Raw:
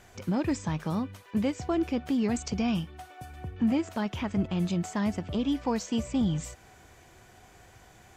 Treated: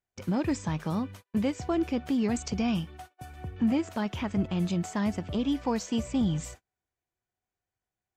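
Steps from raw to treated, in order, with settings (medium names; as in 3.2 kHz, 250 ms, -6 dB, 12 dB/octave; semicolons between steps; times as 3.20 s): gate -45 dBFS, range -37 dB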